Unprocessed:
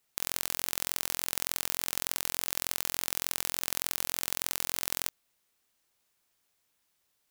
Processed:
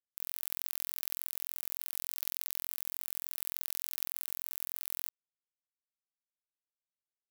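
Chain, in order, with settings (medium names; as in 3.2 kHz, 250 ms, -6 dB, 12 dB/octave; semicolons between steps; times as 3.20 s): expander on every frequency bin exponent 2; compressor with a negative ratio -39 dBFS, ratio -0.5; high-pass 320 Hz 24 dB/octave; high-order bell 1.5 kHz -15 dB 2.4 oct; static phaser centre 2 kHz, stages 6; echo that smears into a reverb 584 ms, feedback 43%, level -10 dB; bit crusher 5-bit; trim +3.5 dB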